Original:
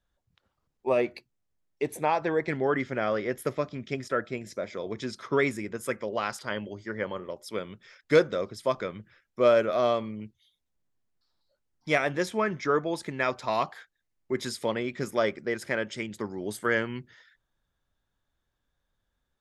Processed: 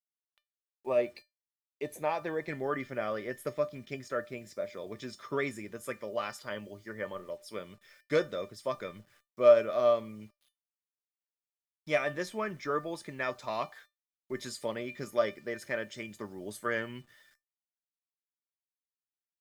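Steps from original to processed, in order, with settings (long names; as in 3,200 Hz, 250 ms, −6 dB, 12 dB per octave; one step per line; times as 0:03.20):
bit reduction 10 bits
tuned comb filter 600 Hz, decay 0.18 s, harmonics all, mix 80%
level +5 dB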